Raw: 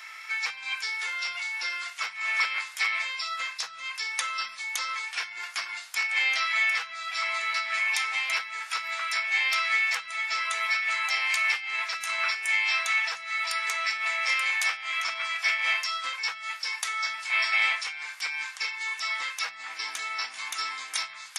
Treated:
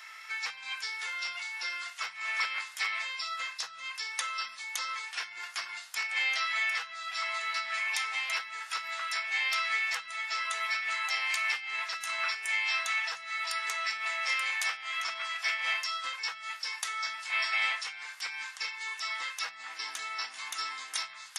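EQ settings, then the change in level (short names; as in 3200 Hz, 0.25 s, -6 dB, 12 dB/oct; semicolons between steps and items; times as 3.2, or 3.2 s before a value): notch 2300 Hz, Q 12; -3.5 dB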